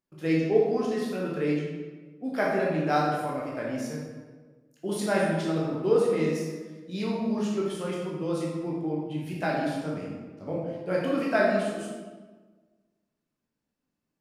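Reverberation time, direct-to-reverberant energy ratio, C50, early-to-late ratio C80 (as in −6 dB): 1.4 s, −4.5 dB, 0.0 dB, 3.0 dB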